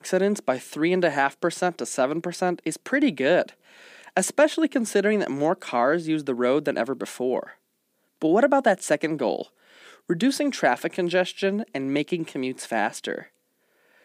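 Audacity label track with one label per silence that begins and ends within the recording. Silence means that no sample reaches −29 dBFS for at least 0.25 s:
3.490000	4.170000	silence
7.430000	8.220000	silence
9.420000	10.100000	silence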